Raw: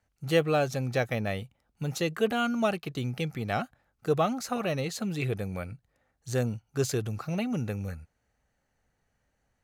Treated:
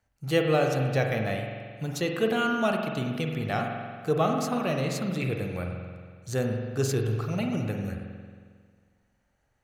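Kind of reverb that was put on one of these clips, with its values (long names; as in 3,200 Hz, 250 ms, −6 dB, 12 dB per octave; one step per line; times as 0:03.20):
spring reverb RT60 1.8 s, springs 45 ms, chirp 70 ms, DRR 2 dB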